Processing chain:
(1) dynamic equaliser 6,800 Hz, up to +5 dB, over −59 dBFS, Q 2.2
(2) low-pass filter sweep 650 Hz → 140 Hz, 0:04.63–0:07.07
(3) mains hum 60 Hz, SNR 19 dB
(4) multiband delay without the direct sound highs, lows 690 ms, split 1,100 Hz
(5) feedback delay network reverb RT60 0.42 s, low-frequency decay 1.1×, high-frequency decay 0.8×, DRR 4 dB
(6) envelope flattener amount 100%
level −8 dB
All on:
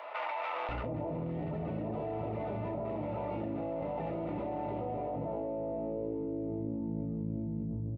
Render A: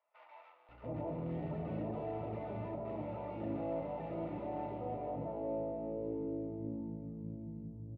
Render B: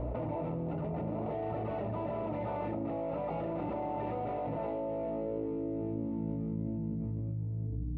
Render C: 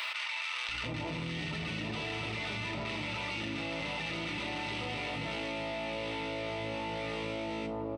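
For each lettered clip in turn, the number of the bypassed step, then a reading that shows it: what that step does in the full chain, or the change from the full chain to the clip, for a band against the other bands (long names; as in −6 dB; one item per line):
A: 6, change in crest factor +2.0 dB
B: 4, 2 kHz band −7.5 dB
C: 2, 2 kHz band +16.0 dB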